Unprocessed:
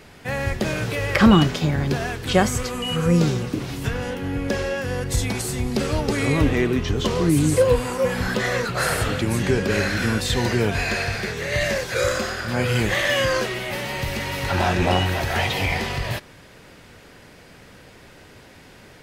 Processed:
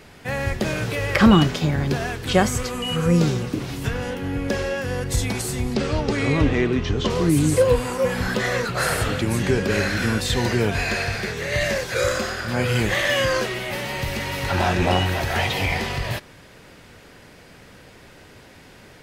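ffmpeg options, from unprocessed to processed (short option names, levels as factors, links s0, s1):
-filter_complex "[0:a]asettb=1/sr,asplit=3[s0][s1][s2];[s0]atrim=end=5.744[s3];[s1]atrim=start=5.74:end=7.1,asetpts=PTS-STARTPTS,afade=t=in:d=0.004:c=qsin,afade=t=out:st=1.356:d=0.004:c=qsin,lowpass=6100[s4];[s2]atrim=start=7.096[s5];[s3][s4]acrossfade=d=0.004:c1=hsin:c2=qsin[s6];[s6][s5]acrossfade=d=0.004:c1=qsin:c2=hsin"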